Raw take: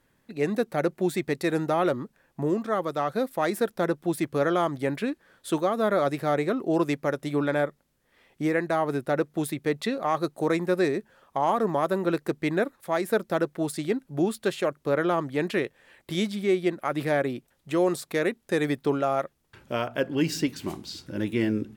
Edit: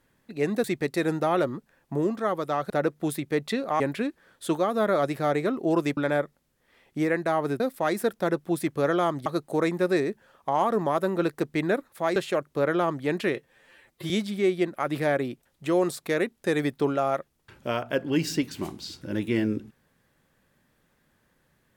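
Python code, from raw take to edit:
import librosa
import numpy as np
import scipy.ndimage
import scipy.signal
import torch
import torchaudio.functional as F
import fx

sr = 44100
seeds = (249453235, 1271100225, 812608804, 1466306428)

y = fx.edit(x, sr, fx.cut(start_s=0.64, length_s=0.47),
    fx.swap(start_s=3.17, length_s=1.66, other_s=9.04, other_length_s=1.1),
    fx.cut(start_s=7.0, length_s=0.41),
    fx.cut(start_s=13.04, length_s=1.42),
    fx.stretch_span(start_s=15.65, length_s=0.5, factor=1.5), tone=tone)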